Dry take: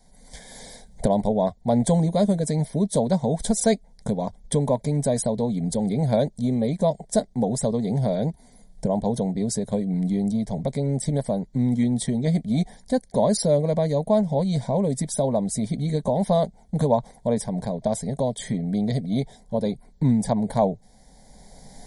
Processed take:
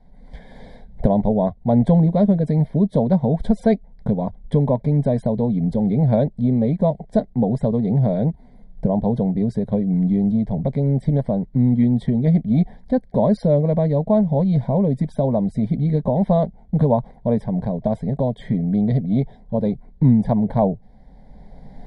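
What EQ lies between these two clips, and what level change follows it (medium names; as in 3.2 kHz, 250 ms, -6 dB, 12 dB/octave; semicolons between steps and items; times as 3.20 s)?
distance through air 430 m; bass shelf 270 Hz +6 dB; +2.0 dB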